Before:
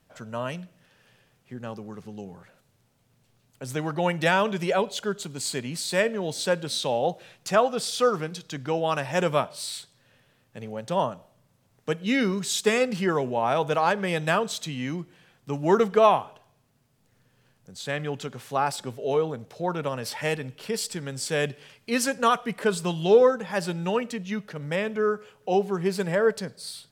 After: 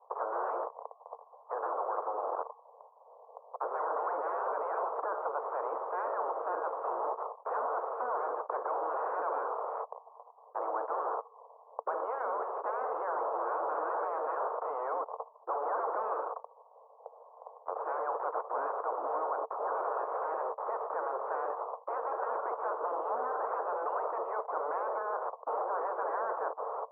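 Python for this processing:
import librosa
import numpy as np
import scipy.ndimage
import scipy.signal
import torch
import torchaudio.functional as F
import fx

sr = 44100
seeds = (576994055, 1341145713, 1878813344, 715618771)

p1 = fx.spec_gate(x, sr, threshold_db=-15, keep='weak')
p2 = fx.fuzz(p1, sr, gain_db=55.0, gate_db=-59.0)
p3 = p1 + F.gain(torch.from_numpy(p2), -10.0).numpy()
p4 = scipy.signal.sosfilt(scipy.signal.cheby1(5, 1.0, [450.0, 1100.0], 'bandpass', fs=sr, output='sos'), p3)
p5 = fx.spectral_comp(p4, sr, ratio=4.0)
y = F.gain(torch.from_numpy(p5), -4.0).numpy()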